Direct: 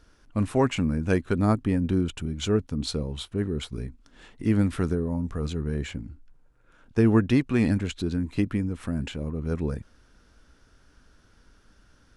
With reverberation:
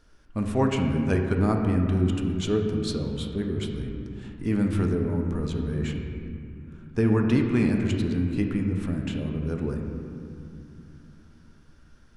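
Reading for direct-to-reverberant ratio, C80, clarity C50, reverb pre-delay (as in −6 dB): 2.0 dB, 5.0 dB, 4.0 dB, 5 ms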